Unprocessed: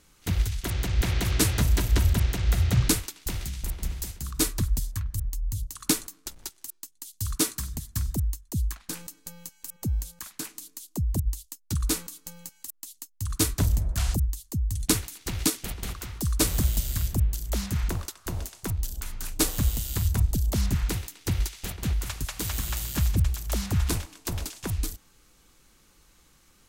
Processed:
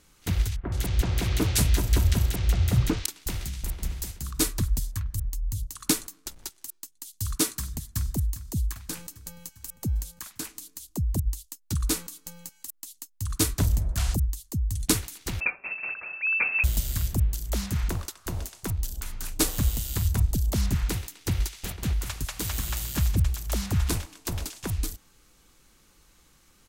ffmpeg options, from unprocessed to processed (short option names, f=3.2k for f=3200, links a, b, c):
-filter_complex "[0:a]asettb=1/sr,asplit=3[a][b][c];[a]atrim=end=0.564[d];[b]atrim=start=0.56:end=3.06,asetpts=PTS-STARTPTS,afade=t=in:d=0.004:c=qsin,afade=t=out:st=2.496:d=0.004:c=qsin,acrossover=split=1600[e][f];[f]adelay=160[g];[e][g]amix=inputs=2:normalize=0,atrim=end_sample=110250[h];[c]atrim=start=3.056[i];[d][h]acrossfade=d=0.004:c1=hsin:c2=qsin[j];[j][i]acrossfade=d=0.004:c1=qsin:c2=hsin,asplit=2[k][l];[l]afade=t=in:st=7.67:d=0.01,afade=t=out:st=8.12:d=0.01,aecho=0:1:400|800|1200|1600|2000|2400|2800|3200:0.223872|0.145517|0.094586|0.0614809|0.0399626|0.0259757|0.0168842|0.0109747[m];[k][m]amix=inputs=2:normalize=0,asettb=1/sr,asplit=3[n][o][p];[n]atrim=end=15.404[q];[o]atrim=start=15.4:end=16.64,asetpts=PTS-STARTPTS,afade=t=in:d=0.004:c=qsin,afade=t=out:st=1.236:d=0.004:c=qsin,lowpass=f=2.3k:t=q:w=0.5098,lowpass=f=2.3k:t=q:w=0.6013,lowpass=f=2.3k:t=q:w=0.9,lowpass=f=2.3k:t=q:w=2.563,afreqshift=-2700[r];[p]atrim=start=16.636[s];[q][r]acrossfade=d=0.004:c1=hsin:c2=qsin[t];[t][s]acrossfade=d=0.004:c1=qsin:c2=hsin"